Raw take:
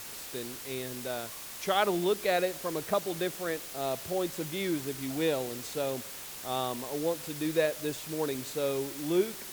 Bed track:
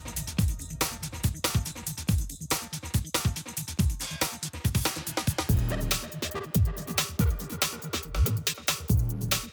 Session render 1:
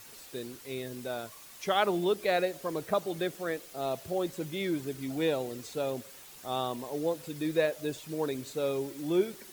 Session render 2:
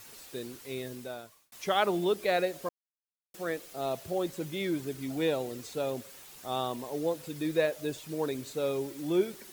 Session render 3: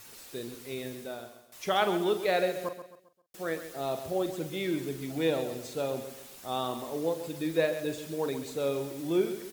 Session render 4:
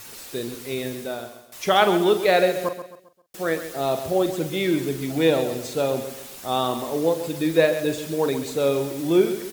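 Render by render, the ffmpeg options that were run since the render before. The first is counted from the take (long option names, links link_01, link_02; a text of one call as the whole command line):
ffmpeg -i in.wav -af "afftdn=noise_reduction=9:noise_floor=-43" out.wav
ffmpeg -i in.wav -filter_complex "[0:a]asplit=4[link_01][link_02][link_03][link_04];[link_01]atrim=end=1.52,asetpts=PTS-STARTPTS,afade=type=out:start_time=0.86:duration=0.66[link_05];[link_02]atrim=start=1.52:end=2.69,asetpts=PTS-STARTPTS,afade=type=in:duration=0.004:curve=hsin,afade=type=out:start_time=1.166:duration=0.004:curve=hsin[link_06];[link_03]atrim=start=2.69:end=3.34,asetpts=PTS-STARTPTS,volume=0[link_07];[link_04]atrim=start=3.34,asetpts=PTS-STARTPTS,afade=type=in:duration=0.004:curve=hsin[link_08];[link_05][link_06][link_07][link_08]concat=n=4:v=0:a=1" out.wav
ffmpeg -i in.wav -filter_complex "[0:a]asplit=2[link_01][link_02];[link_02]adelay=43,volume=-11dB[link_03];[link_01][link_03]amix=inputs=2:normalize=0,asplit=2[link_04][link_05];[link_05]aecho=0:1:133|266|399|532:0.282|0.11|0.0429|0.0167[link_06];[link_04][link_06]amix=inputs=2:normalize=0" out.wav
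ffmpeg -i in.wav -af "volume=9dB" out.wav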